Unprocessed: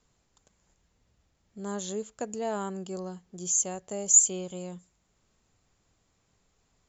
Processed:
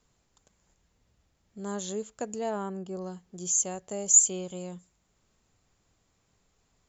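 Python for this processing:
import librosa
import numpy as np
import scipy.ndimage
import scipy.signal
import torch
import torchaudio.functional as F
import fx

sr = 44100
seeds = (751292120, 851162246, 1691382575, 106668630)

y = fx.high_shelf(x, sr, hz=fx.line((2.49, 3600.0), (3.0, 2200.0)), db=-11.5, at=(2.49, 3.0), fade=0.02)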